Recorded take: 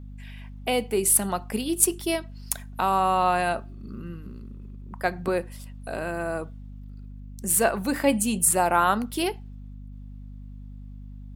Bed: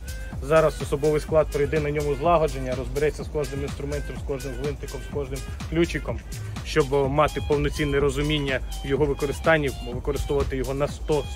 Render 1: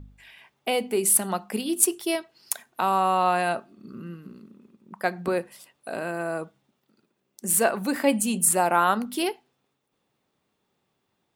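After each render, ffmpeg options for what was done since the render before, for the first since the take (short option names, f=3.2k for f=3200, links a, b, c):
-af "bandreject=f=50:t=h:w=4,bandreject=f=100:t=h:w=4,bandreject=f=150:t=h:w=4,bandreject=f=200:t=h:w=4,bandreject=f=250:t=h:w=4"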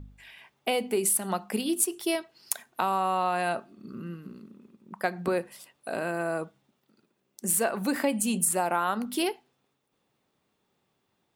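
-af "acompressor=threshold=-22dB:ratio=6"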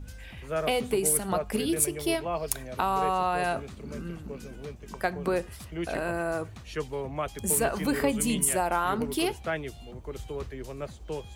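-filter_complex "[1:a]volume=-12dB[a];[0:a][a]amix=inputs=2:normalize=0"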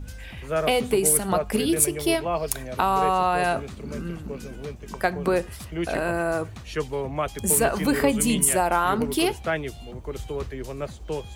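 -af "volume=5dB,alimiter=limit=-3dB:level=0:latency=1"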